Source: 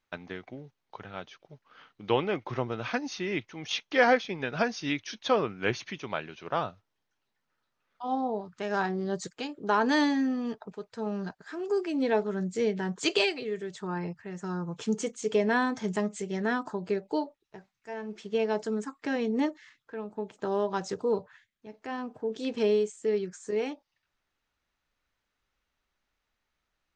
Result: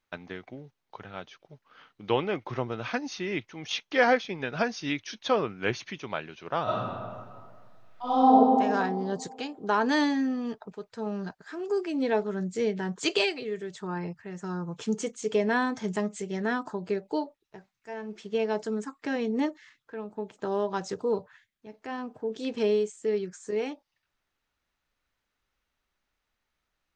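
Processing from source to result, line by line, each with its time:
0:06.63–0:08.34: thrown reverb, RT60 1.9 s, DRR −11.5 dB

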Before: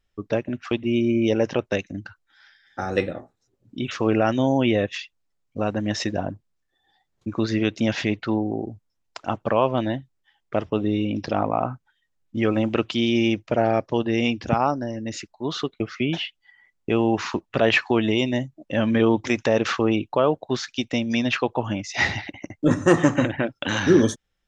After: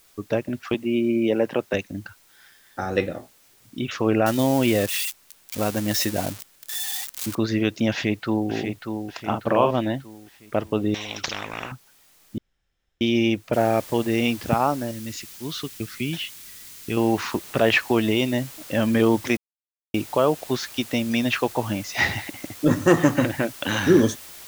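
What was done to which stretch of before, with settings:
0:00.74–0:01.74: three-way crossover with the lows and the highs turned down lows −14 dB, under 150 Hz, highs −23 dB, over 3,700 Hz
0:04.26–0:07.35: spike at every zero crossing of −18.5 dBFS
0:07.90–0:08.51: delay throw 590 ms, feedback 45%, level −6.5 dB
0:09.23–0:09.71: double-tracking delay 43 ms −5 dB
0:10.94–0:11.72: every bin compressed towards the loudest bin 10 to 1
0:12.38–0:13.01: fill with room tone
0:13.53: noise floor change −57 dB −42 dB
0:14.91–0:16.97: parametric band 680 Hz −12.5 dB 1.9 octaves
0:19.37–0:19.94: silence

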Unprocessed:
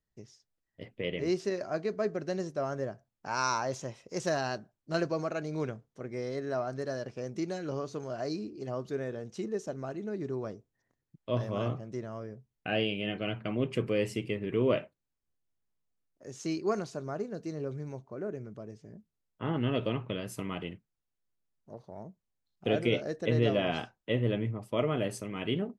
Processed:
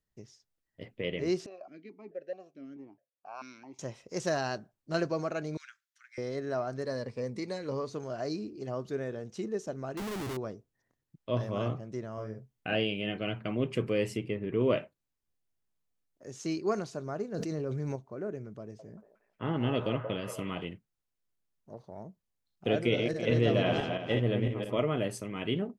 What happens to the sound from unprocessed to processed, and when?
0:01.46–0:03.79: formant filter that steps through the vowels 4.6 Hz
0:05.57–0:06.18: elliptic high-pass filter 1,500 Hz, stop band 60 dB
0:06.85–0:07.90: EQ curve with evenly spaced ripples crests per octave 0.95, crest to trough 9 dB
0:09.97–0:10.37: comparator with hysteresis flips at −45 dBFS
0:12.13–0:12.75: double-tracking delay 46 ms −3 dB
0:14.16–0:14.59: high-shelf EQ 4,100 Hz → 2,600 Hz −11 dB
0:17.34–0:17.96: envelope flattener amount 100%
0:18.61–0:20.65: echo through a band-pass that steps 180 ms, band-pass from 690 Hz, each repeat 0.7 octaves, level −3 dB
0:22.80–0:24.79: feedback delay that plays each chunk backwards 168 ms, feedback 46%, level −4 dB

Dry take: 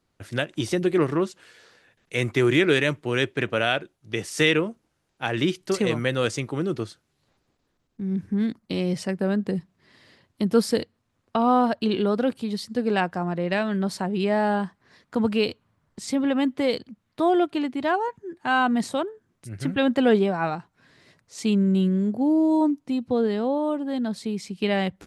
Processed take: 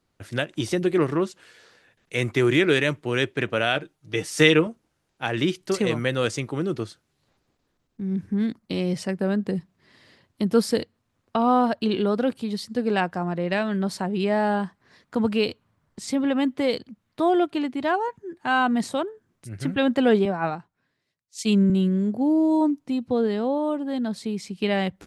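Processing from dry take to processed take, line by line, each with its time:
0:03.75–0:04.67: comb filter 6.5 ms, depth 67%
0:20.25–0:21.70: multiband upward and downward expander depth 100%

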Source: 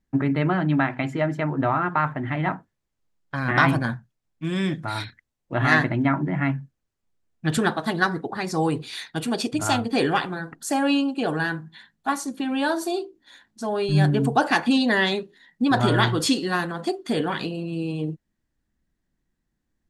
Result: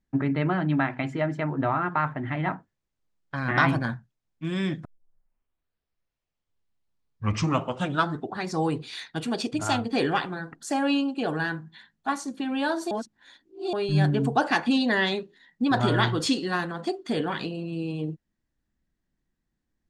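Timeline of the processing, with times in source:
0:04.85: tape start 3.63 s
0:12.91–0:13.73: reverse
whole clip: low-pass filter 7,800 Hz 12 dB per octave; level −3 dB

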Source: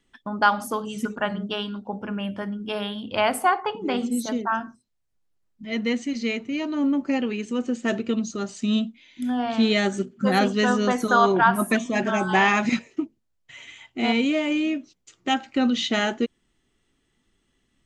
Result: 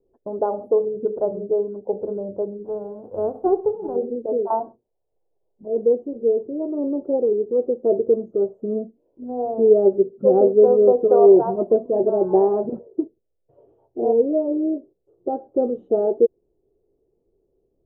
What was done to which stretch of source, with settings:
0:02.64–0:03.95: spectral envelope flattened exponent 0.1
0:04.50–0:05.68: parametric band 870 Hz +14.5 dB 1.1 octaves
whole clip: inverse Chebyshev low-pass filter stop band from 1,900 Hz, stop band 60 dB; low shelf with overshoot 320 Hz −9 dB, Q 3; level +8 dB

